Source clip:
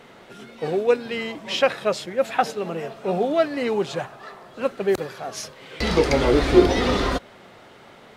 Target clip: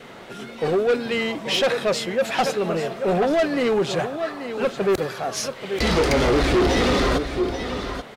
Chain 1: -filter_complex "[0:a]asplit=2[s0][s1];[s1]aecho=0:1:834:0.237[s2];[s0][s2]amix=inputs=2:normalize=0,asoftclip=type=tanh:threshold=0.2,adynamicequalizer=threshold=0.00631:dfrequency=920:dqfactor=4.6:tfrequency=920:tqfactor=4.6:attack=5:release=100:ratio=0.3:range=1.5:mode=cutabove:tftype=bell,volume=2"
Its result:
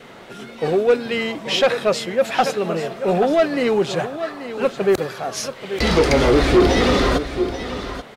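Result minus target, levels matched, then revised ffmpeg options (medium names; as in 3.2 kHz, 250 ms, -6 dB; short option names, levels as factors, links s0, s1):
saturation: distortion -5 dB
-filter_complex "[0:a]asplit=2[s0][s1];[s1]aecho=0:1:834:0.237[s2];[s0][s2]amix=inputs=2:normalize=0,asoftclip=type=tanh:threshold=0.0891,adynamicequalizer=threshold=0.00631:dfrequency=920:dqfactor=4.6:tfrequency=920:tqfactor=4.6:attack=5:release=100:ratio=0.3:range=1.5:mode=cutabove:tftype=bell,volume=2"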